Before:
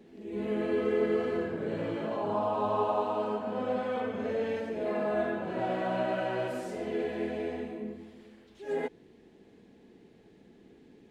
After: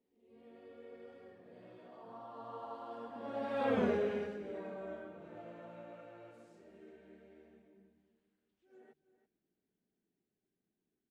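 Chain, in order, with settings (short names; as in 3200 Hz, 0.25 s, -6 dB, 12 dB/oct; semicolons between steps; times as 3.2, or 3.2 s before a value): Doppler pass-by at 3.79, 31 m/s, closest 3.1 m; notches 50/100/150 Hz; on a send: echo 0.331 s -14 dB; on the sum: gain +4.5 dB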